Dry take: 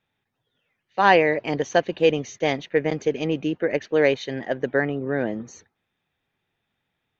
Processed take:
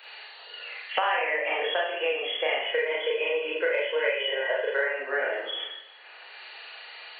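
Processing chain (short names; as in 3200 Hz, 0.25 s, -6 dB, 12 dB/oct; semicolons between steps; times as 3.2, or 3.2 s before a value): nonlinear frequency compression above 2700 Hz 4:1; high shelf 2700 Hz -7.5 dB; compressor 3:1, threshold -24 dBFS, peak gain reduction 10 dB; inverse Chebyshev high-pass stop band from 220 Hz, stop band 40 dB; tilt +4.5 dB/oct; 2.56–4.87 comb 2 ms, depth 82%; Schroeder reverb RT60 0.56 s, combs from 26 ms, DRR -6 dB; three-band squash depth 100%; gain -3.5 dB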